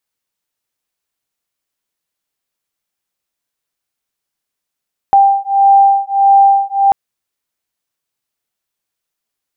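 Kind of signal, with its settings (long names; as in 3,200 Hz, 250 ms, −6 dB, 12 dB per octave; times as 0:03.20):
two tones that beat 790 Hz, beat 1.6 Hz, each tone −9.5 dBFS 1.79 s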